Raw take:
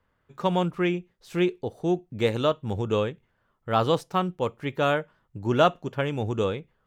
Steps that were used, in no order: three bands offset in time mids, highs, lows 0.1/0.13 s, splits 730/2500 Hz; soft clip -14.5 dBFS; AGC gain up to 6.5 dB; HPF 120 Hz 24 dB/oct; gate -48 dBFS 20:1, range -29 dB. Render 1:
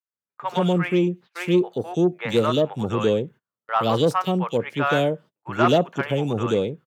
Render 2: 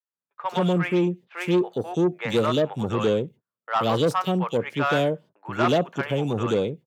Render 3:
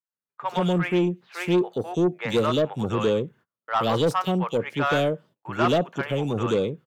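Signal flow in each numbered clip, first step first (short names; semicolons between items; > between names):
three bands offset in time > soft clip > HPF > gate > AGC; gate > three bands offset in time > AGC > soft clip > HPF; AGC > three bands offset in time > gate > HPF > soft clip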